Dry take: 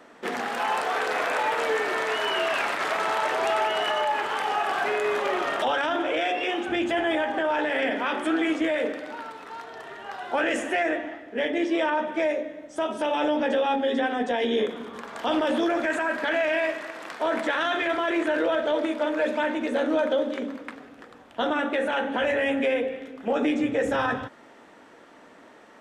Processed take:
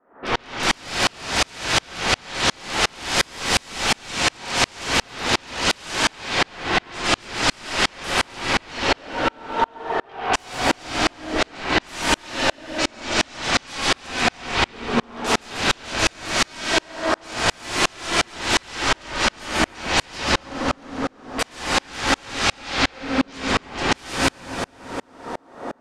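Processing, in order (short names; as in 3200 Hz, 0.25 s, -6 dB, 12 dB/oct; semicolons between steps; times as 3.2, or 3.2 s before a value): LPF 1500 Hz 24 dB/oct; notches 60/120/180/240/300/360/420/480 Hz; 18.83–19.53 HPF 270 Hz 6 dB/oct; sine folder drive 19 dB, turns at -15 dBFS; split-band echo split 350 Hz, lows 0.245 s, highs 0.14 s, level -3.5 dB; reverb, pre-delay 3 ms, DRR -3 dB; dB-ramp tremolo swelling 2.8 Hz, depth 37 dB; gain -3 dB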